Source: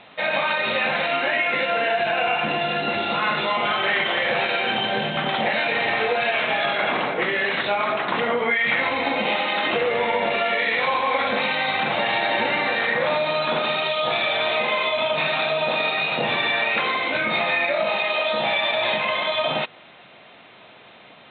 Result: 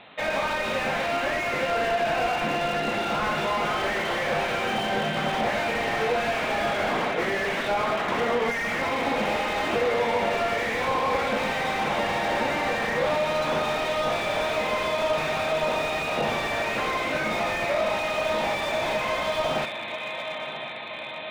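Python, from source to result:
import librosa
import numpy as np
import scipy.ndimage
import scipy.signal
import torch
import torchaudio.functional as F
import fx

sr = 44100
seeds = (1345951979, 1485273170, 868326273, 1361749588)

y = fx.echo_diffused(x, sr, ms=986, feedback_pct=69, wet_db=-11.5)
y = fx.slew_limit(y, sr, full_power_hz=98.0)
y = y * 10.0 ** (-1.5 / 20.0)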